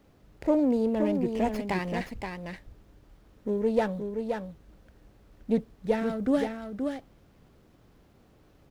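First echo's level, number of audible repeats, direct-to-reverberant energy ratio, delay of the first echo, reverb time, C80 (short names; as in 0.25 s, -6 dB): -6.0 dB, 1, none, 0.524 s, none, none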